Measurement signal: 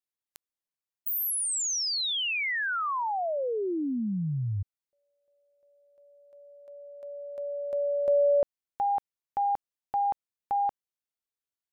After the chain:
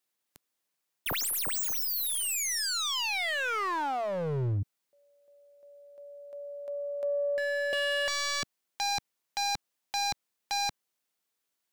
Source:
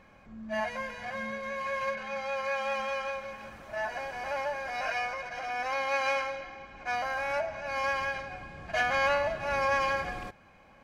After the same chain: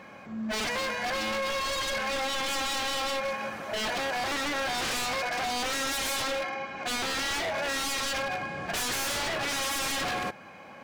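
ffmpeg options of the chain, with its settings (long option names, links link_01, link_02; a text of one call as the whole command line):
ffmpeg -i in.wav -af "aeval=exprs='0.15*(cos(1*acos(clip(val(0)/0.15,-1,1)))-cos(1*PI/2))+0.0335*(cos(2*acos(clip(val(0)/0.15,-1,1)))-cos(2*PI/2))+0.0188*(cos(5*acos(clip(val(0)/0.15,-1,1)))-cos(5*PI/2))':channel_layout=same,highpass=160,aeval=exprs='0.0251*(abs(mod(val(0)/0.0251+3,4)-2)-1)':channel_layout=same,volume=6.5dB" out.wav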